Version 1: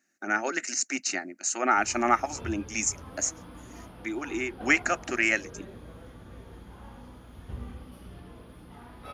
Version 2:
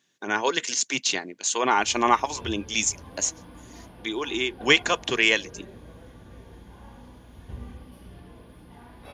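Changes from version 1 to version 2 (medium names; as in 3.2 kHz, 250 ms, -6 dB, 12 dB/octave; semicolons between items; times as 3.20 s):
speech: remove static phaser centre 680 Hz, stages 8; master: add Butterworth band-stop 1.3 kHz, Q 7.9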